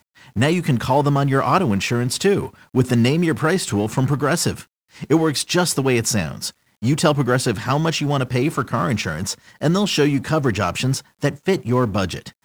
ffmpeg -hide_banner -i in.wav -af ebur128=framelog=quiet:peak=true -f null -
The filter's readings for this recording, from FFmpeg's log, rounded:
Integrated loudness:
  I:         -19.8 LUFS
  Threshold: -29.9 LUFS
Loudness range:
  LRA:         1.9 LU
  Threshold: -39.9 LUFS
  LRA low:   -20.7 LUFS
  LRA high:  -18.7 LUFS
True peak:
  Peak:       -3.2 dBFS